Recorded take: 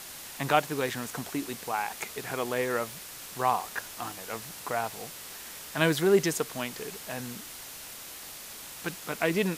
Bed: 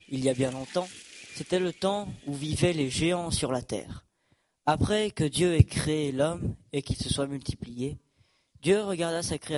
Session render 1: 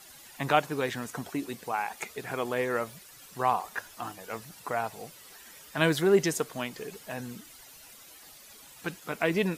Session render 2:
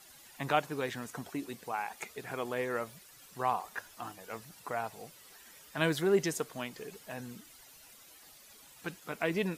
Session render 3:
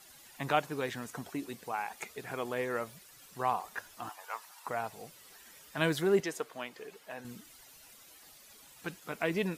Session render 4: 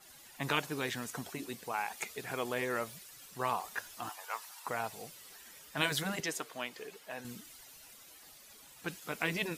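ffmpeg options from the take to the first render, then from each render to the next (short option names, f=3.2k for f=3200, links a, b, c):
-af "afftdn=nr=12:nf=-44"
-af "volume=-5dB"
-filter_complex "[0:a]asettb=1/sr,asplit=3[a][b][c];[a]atrim=end=4.094[d];[b]atrim=start=4.09:end=4.67,asetpts=PTS-STARTPTS,afade=t=in:d=0.004:c=qsin,afade=t=out:st=0.576:d=0.004:c=qsin,highpass=f=940:t=q:w=3[e];[c]atrim=start=4.666[f];[d][e]acrossfade=d=0.004:c1=hsin:c2=qsin[g];[g][f]acrossfade=d=0.004:c1=qsin:c2=hsin,asettb=1/sr,asplit=3[h][i][j];[h]atrim=end=6.204[k];[i]atrim=start=6.2:end=7.25,asetpts=PTS-STARTPTS,afade=t=in:d=0.004:c=qsin,afade=t=out:st=1.046:d=0.004:c=qsin,bass=f=250:g=-13,treble=f=4k:g=-7[l];[j]atrim=start=7.246[m];[k][l]acrossfade=d=0.004:c1=hsin:c2=qsin[n];[n][m]acrossfade=d=0.004:c1=qsin:c2=hsin"
-af "afftfilt=real='re*lt(hypot(re,im),0.2)':imag='im*lt(hypot(re,im),0.2)':win_size=1024:overlap=0.75,adynamicequalizer=threshold=0.00355:dfrequency=2100:dqfactor=0.7:tfrequency=2100:tqfactor=0.7:attack=5:release=100:ratio=0.375:range=2.5:mode=boostabove:tftype=highshelf"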